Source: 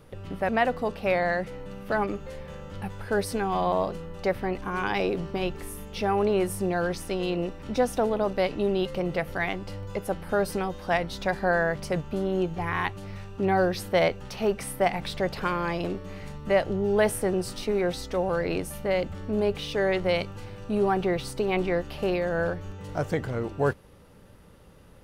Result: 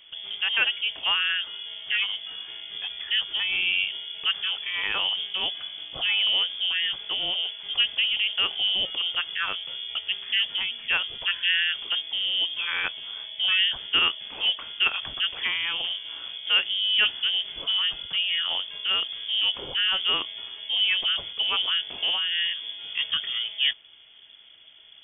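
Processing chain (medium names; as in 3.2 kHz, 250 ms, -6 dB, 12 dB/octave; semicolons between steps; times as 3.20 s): frequency inversion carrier 3.4 kHz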